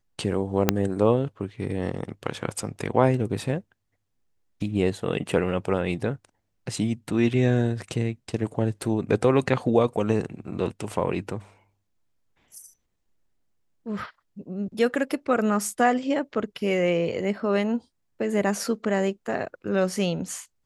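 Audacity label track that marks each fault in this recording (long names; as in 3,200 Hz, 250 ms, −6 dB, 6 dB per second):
0.690000	0.690000	click −2 dBFS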